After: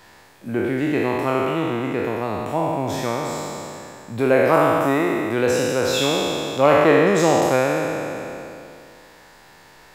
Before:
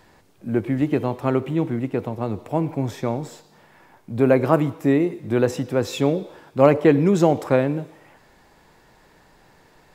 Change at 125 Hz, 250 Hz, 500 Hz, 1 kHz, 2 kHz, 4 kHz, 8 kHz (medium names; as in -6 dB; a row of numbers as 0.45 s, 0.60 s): -3.5 dB, -1.5 dB, +2.0 dB, +6.0 dB, +8.5 dB, +11.0 dB, +10.5 dB